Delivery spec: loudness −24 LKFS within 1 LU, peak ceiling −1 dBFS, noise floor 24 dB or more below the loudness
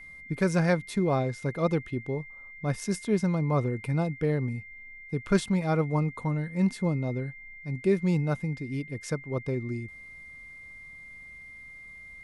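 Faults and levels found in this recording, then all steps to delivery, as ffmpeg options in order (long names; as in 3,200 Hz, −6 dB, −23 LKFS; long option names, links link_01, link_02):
interfering tone 2,100 Hz; level of the tone −44 dBFS; integrated loudness −29.0 LKFS; sample peak −10.0 dBFS; target loudness −24.0 LKFS
→ -af "bandreject=frequency=2100:width=30"
-af "volume=5dB"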